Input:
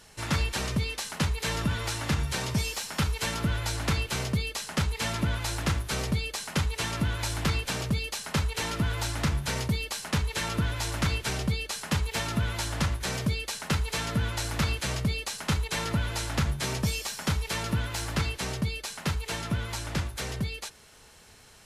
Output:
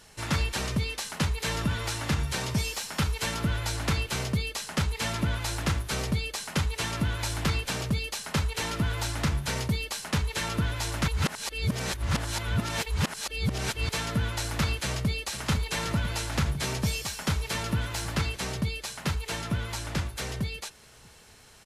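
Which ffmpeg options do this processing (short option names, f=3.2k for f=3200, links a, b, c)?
-filter_complex "[0:a]asplit=2[a][b];[b]afade=t=in:st=14.78:d=0.01,afade=t=out:st=15.24:d=0.01,aecho=0:1:500|1000|1500|2000|2500|3000|3500|4000|4500|5000|5500|6000:0.354813|0.283851|0.227081|0.181664|0.145332|0.116265|0.0930122|0.0744098|0.0595278|0.0476222|0.0380978|0.0304782[c];[a][c]amix=inputs=2:normalize=0,asplit=3[d][e][f];[d]atrim=end=11.082[g];[e]atrim=start=11.078:end=13.892,asetpts=PTS-STARTPTS,areverse[h];[f]atrim=start=13.888[i];[g][h]acrossfade=d=0.004:c1=hsin:c2=hsin[j];[j][i]acrossfade=d=0.004:c1=hsin:c2=hsin"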